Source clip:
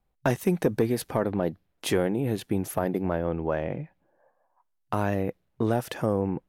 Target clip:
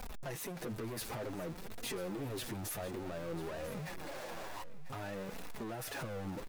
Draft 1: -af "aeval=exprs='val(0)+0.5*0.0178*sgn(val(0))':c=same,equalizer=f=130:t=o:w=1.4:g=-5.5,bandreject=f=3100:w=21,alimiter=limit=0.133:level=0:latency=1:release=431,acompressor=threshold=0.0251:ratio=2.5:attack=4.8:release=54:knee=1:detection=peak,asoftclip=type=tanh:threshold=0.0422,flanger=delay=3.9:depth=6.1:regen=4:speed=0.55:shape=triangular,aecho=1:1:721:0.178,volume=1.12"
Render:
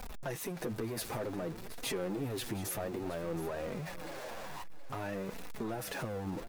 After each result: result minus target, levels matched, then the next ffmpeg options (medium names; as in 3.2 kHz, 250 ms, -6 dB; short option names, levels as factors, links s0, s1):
echo 272 ms early; saturation: distortion -8 dB
-af "aeval=exprs='val(0)+0.5*0.0178*sgn(val(0))':c=same,equalizer=f=130:t=o:w=1.4:g=-5.5,bandreject=f=3100:w=21,alimiter=limit=0.133:level=0:latency=1:release=431,acompressor=threshold=0.0251:ratio=2.5:attack=4.8:release=54:knee=1:detection=peak,asoftclip=type=tanh:threshold=0.0422,flanger=delay=3.9:depth=6.1:regen=4:speed=0.55:shape=triangular,aecho=1:1:993:0.178,volume=1.12"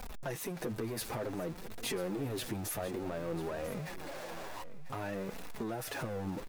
saturation: distortion -8 dB
-af "aeval=exprs='val(0)+0.5*0.0178*sgn(val(0))':c=same,equalizer=f=130:t=o:w=1.4:g=-5.5,bandreject=f=3100:w=21,alimiter=limit=0.133:level=0:latency=1:release=431,acompressor=threshold=0.0251:ratio=2.5:attack=4.8:release=54:knee=1:detection=peak,asoftclip=type=tanh:threshold=0.0168,flanger=delay=3.9:depth=6.1:regen=4:speed=0.55:shape=triangular,aecho=1:1:993:0.178,volume=1.12"